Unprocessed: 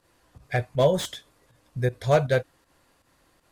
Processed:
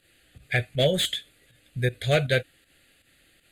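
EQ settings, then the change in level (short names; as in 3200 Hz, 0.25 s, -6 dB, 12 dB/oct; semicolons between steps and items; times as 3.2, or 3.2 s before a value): bell 5000 Hz +13.5 dB 2.9 oct; fixed phaser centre 2400 Hz, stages 4; 0.0 dB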